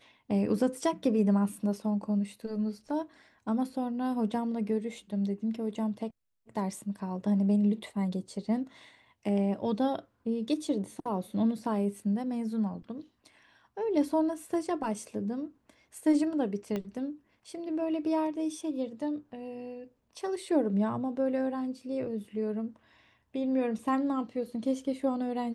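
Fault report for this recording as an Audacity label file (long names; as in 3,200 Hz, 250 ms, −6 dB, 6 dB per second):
16.760000	16.760000	click −21 dBFS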